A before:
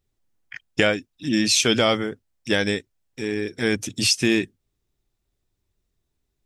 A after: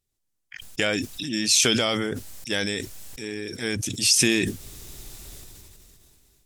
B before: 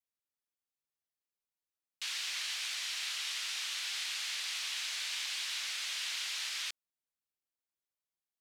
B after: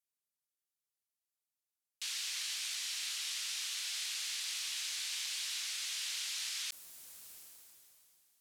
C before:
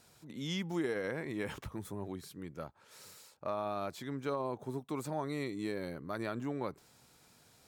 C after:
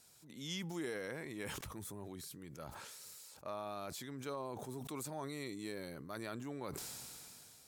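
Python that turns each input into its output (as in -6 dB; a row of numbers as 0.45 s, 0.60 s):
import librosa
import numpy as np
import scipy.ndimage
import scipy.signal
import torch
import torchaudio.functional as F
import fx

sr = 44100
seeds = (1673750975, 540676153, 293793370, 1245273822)

y = fx.peak_eq(x, sr, hz=11000.0, db=11.5, octaves=2.4)
y = fx.sustainer(y, sr, db_per_s=20.0)
y = F.gain(torch.from_numpy(y), -8.0).numpy()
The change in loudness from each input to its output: -1.0 LU, -1.0 LU, -6.0 LU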